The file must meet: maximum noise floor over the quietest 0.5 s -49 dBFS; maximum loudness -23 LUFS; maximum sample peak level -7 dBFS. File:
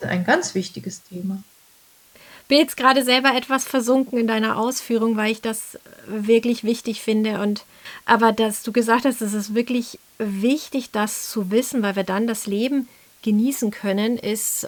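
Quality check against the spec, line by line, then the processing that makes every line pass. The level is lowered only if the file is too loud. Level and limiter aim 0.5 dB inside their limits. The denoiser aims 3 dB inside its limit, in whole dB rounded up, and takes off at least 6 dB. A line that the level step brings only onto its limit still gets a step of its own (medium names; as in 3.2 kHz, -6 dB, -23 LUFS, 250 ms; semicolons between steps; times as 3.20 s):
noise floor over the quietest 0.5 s -53 dBFS: pass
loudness -21.0 LUFS: fail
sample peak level -1.5 dBFS: fail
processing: trim -2.5 dB; peak limiter -7.5 dBFS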